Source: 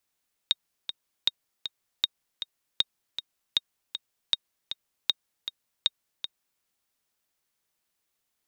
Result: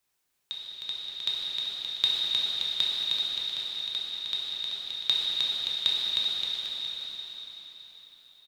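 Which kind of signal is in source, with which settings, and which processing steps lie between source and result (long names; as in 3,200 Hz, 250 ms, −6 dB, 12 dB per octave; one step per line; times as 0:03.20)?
click track 157 BPM, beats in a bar 2, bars 8, 3,730 Hz, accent 10 dB −8.5 dBFS
amplitude tremolo 1 Hz, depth 76%
bouncing-ball delay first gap 310 ms, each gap 0.85×, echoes 5
dense smooth reverb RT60 4.3 s, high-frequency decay 0.95×, DRR −6 dB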